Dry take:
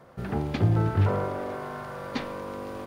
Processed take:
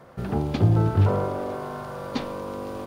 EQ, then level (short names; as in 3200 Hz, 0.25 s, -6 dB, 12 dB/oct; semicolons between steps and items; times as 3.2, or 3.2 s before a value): dynamic EQ 1900 Hz, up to -7 dB, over -51 dBFS, Q 1.5; +3.5 dB